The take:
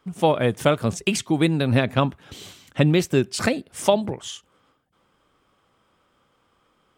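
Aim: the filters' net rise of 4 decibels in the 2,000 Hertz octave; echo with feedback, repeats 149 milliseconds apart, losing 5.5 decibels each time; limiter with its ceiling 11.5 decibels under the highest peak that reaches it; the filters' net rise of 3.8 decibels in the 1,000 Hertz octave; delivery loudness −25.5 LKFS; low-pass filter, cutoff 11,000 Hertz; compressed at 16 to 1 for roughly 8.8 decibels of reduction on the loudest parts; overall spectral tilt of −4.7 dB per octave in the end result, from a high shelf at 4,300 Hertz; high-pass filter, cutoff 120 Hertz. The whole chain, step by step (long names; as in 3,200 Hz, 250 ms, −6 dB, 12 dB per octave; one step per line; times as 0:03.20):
high-pass filter 120 Hz
low-pass filter 11,000 Hz
parametric band 1,000 Hz +4 dB
parametric band 2,000 Hz +5 dB
high-shelf EQ 4,300 Hz −4 dB
downward compressor 16 to 1, threshold −20 dBFS
brickwall limiter −17.5 dBFS
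repeating echo 149 ms, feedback 53%, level −5.5 dB
level +4 dB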